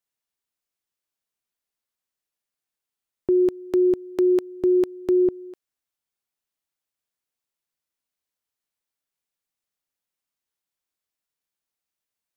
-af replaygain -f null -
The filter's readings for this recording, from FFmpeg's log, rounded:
track_gain = +2.5 dB
track_peak = 0.137